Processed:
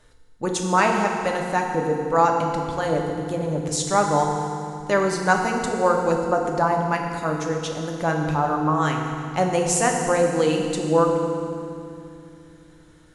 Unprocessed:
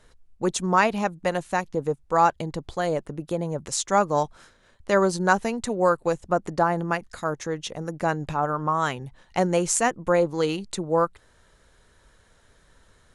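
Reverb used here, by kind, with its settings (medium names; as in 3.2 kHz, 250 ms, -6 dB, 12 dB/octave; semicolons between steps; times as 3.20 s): FDN reverb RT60 2.5 s, low-frequency decay 1.55×, high-frequency decay 0.9×, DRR 1 dB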